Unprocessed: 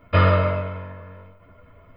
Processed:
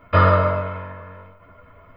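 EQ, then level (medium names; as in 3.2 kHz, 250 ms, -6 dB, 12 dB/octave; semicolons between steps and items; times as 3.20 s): peaking EQ 1.2 kHz +6.5 dB 1.8 oct; dynamic bell 2.5 kHz, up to -7 dB, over -36 dBFS, Q 1.6; 0.0 dB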